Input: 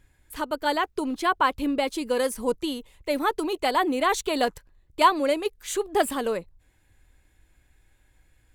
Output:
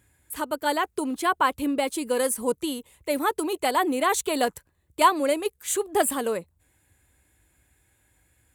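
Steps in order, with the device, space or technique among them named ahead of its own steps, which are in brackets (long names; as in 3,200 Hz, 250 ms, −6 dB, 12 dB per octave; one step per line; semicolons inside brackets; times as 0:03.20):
budget condenser microphone (high-pass filter 60 Hz 24 dB per octave; high shelf with overshoot 6,700 Hz +6.5 dB, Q 1.5)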